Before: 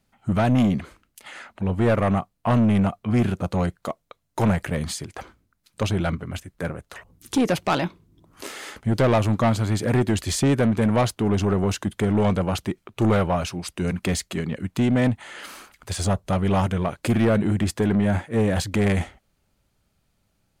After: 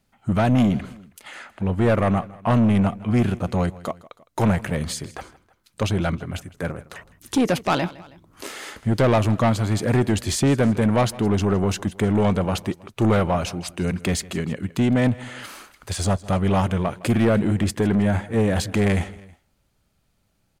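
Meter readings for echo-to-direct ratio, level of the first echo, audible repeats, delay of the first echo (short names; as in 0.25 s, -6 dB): -19.0 dB, -20.0 dB, 2, 0.16 s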